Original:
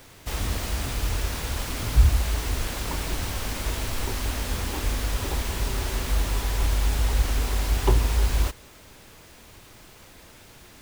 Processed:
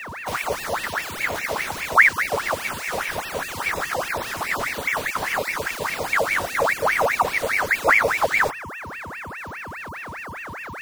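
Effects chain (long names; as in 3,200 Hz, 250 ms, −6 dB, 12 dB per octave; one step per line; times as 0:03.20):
time-frequency cells dropped at random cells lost 33%
steady tone 420 Hz −33 dBFS
ring modulator whose carrier an LFO sweeps 1,400 Hz, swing 65%, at 4.9 Hz
level +4.5 dB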